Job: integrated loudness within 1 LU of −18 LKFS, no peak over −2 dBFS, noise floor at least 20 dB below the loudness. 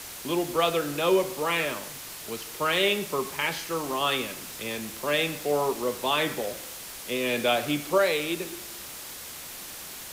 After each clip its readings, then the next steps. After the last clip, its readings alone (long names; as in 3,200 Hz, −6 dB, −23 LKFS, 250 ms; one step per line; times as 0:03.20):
background noise floor −41 dBFS; target noise floor −48 dBFS; integrated loudness −28.0 LKFS; sample peak −12.0 dBFS; target loudness −18.0 LKFS
→ broadband denoise 7 dB, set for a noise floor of −41 dBFS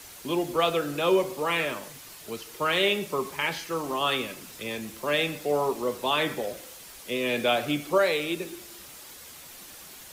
background noise floor −46 dBFS; target noise floor −47 dBFS
→ broadband denoise 6 dB, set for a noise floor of −46 dBFS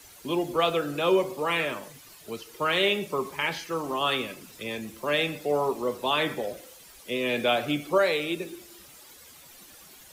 background noise floor −51 dBFS; integrated loudness −27.0 LKFS; sample peak −12.0 dBFS; target loudness −18.0 LKFS
→ level +9 dB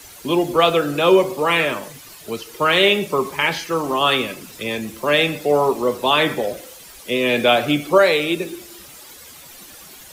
integrated loudness −18.0 LKFS; sample peak −3.0 dBFS; background noise floor −42 dBFS